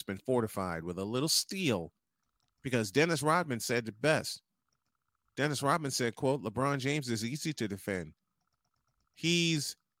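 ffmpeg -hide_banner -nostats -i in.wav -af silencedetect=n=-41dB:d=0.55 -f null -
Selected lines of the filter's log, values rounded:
silence_start: 1.86
silence_end: 2.65 | silence_duration: 0.79
silence_start: 4.35
silence_end: 5.38 | silence_duration: 1.02
silence_start: 8.09
silence_end: 9.24 | silence_duration: 1.15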